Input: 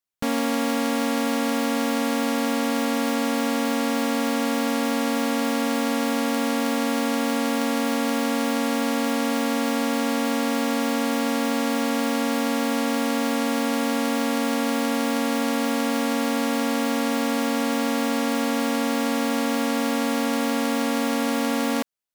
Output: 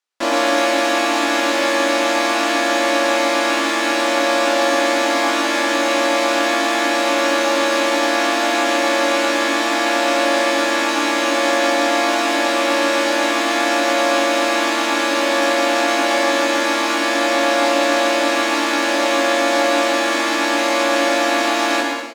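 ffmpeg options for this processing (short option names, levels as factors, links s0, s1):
-filter_complex "[0:a]acrossover=split=290 6800:gain=0.0891 1 0.126[s0][s1][s2];[s0][s1][s2]amix=inputs=3:normalize=0,asplit=3[s3][s4][s5];[s4]asetrate=52444,aresample=44100,atempo=0.840896,volume=1[s6];[s5]asetrate=55563,aresample=44100,atempo=0.793701,volume=1[s7];[s3][s6][s7]amix=inputs=3:normalize=0,asplit=2[s8][s9];[s9]adelay=24,volume=0.501[s10];[s8][s10]amix=inputs=2:normalize=0,aecho=1:1:110|192.5|254.4|300.8|335.6:0.631|0.398|0.251|0.158|0.1,volume=1.41"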